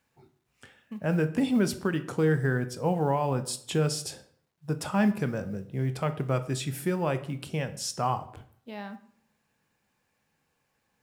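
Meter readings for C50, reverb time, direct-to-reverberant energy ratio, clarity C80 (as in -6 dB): 14.5 dB, 0.60 s, 10.0 dB, 17.5 dB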